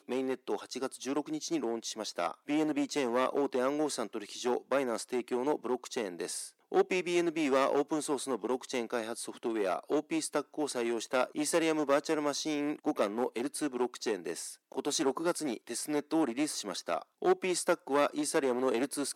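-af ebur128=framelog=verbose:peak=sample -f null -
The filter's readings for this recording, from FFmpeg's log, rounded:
Integrated loudness:
  I:         -32.8 LUFS
  Threshold: -42.8 LUFS
Loudness range:
  LRA:         2.2 LU
  Threshold: -52.8 LUFS
  LRA low:   -34.0 LUFS
  LRA high:  -31.9 LUFS
Sample peak:
  Peak:      -14.1 dBFS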